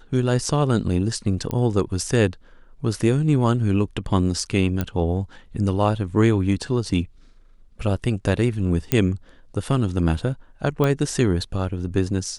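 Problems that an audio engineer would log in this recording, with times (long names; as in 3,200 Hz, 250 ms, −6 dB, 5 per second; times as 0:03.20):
0:01.51: click −12 dBFS
0:04.81: click −10 dBFS
0:08.92: click −6 dBFS
0:10.84: click −10 dBFS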